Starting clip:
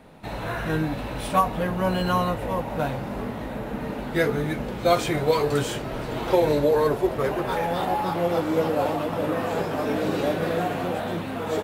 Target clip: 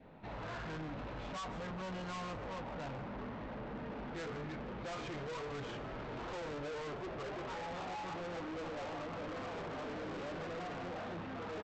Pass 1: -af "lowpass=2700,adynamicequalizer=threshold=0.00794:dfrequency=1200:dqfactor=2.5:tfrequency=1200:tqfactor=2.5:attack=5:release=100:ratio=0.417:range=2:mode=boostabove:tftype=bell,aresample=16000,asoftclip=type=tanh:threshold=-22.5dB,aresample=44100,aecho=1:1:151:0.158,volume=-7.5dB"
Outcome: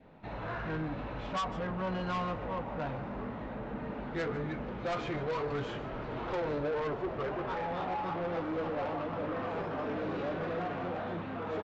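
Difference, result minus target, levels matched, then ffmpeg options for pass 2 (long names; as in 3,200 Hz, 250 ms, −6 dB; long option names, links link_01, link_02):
soft clipping: distortion −6 dB
-af "lowpass=2700,adynamicequalizer=threshold=0.00794:dfrequency=1200:dqfactor=2.5:tfrequency=1200:tqfactor=2.5:attack=5:release=100:ratio=0.417:range=2:mode=boostabove:tftype=bell,aresample=16000,asoftclip=type=tanh:threshold=-33.5dB,aresample=44100,aecho=1:1:151:0.158,volume=-7.5dB"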